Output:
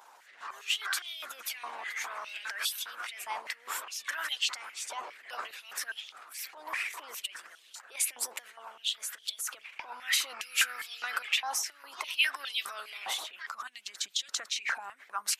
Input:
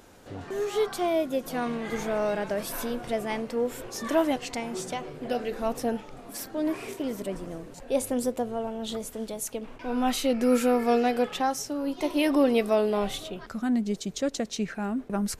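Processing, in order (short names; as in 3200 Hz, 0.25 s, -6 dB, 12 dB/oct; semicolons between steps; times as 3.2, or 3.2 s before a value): transient shaper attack -7 dB, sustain +7 dB; harmonic-percussive split harmonic -15 dB; stepped high-pass 4.9 Hz 930–3300 Hz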